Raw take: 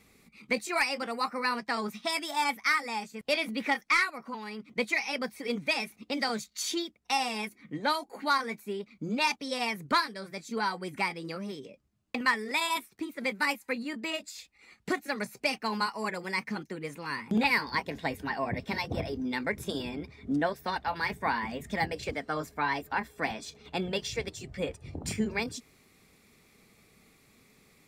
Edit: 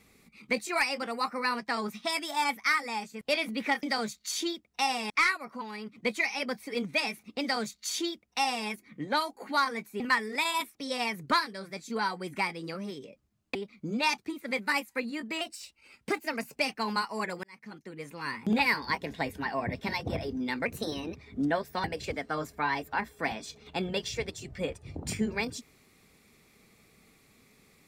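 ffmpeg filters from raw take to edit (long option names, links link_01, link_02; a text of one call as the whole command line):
ffmpeg -i in.wav -filter_complex "[0:a]asplit=13[link_01][link_02][link_03][link_04][link_05][link_06][link_07][link_08][link_09][link_10][link_11][link_12][link_13];[link_01]atrim=end=3.832[link_14];[link_02]atrim=start=6.138:end=7.412[link_15];[link_03]atrim=start=3.828:end=8.732[link_16];[link_04]atrim=start=12.158:end=12.912[link_17];[link_05]atrim=start=9.358:end=12.162[link_18];[link_06]atrim=start=8.728:end=9.362[link_19];[link_07]atrim=start=12.908:end=14.144[link_20];[link_08]atrim=start=14.14:end=15.41,asetpts=PTS-STARTPTS,asetrate=48510,aresample=44100,atrim=end_sample=50915,asetpts=PTS-STARTPTS[link_21];[link_09]atrim=start=15.406:end=16.28,asetpts=PTS-STARTPTS,afade=type=out:start_time=0.87:duration=0.004:curve=hsin[link_22];[link_10]atrim=start=16.28:end=19.504,asetpts=PTS-STARTPTS,afade=type=in:duration=0.87[link_23];[link_11]atrim=start=19.5:end=20.06,asetpts=PTS-STARTPTS,asetrate=49833,aresample=44100[link_24];[link_12]atrim=start=20.056:end=20.752[link_25];[link_13]atrim=start=21.828[link_26];[link_14][link_15]acrossfade=duration=0.004:curve1=hsin:curve2=hsin[link_27];[link_27][link_16]acrossfade=duration=0.004:curve1=hsin:curve2=hsin[link_28];[link_28][link_17]acrossfade=duration=0.004:curve1=hsin:curve2=hsin[link_29];[link_29][link_18]acrossfade=duration=0.004:curve1=hsin:curve2=hsin[link_30];[link_30][link_19]acrossfade=duration=0.004:curve1=hsin:curve2=hsin[link_31];[link_31][link_20]acrossfade=duration=0.004:curve1=hsin:curve2=hsin[link_32];[link_32][link_21]acrossfade=duration=0.004:curve1=hsin:curve2=hsin[link_33];[link_22][link_23]concat=n=2:v=0:a=1[link_34];[link_33][link_34]acrossfade=duration=0.004:curve1=hsin:curve2=hsin[link_35];[link_35][link_24]acrossfade=duration=0.004:curve1=hsin:curve2=hsin[link_36];[link_36][link_25]acrossfade=duration=0.004:curve1=hsin:curve2=hsin[link_37];[link_37][link_26]acrossfade=duration=0.004:curve1=hsin:curve2=hsin" out.wav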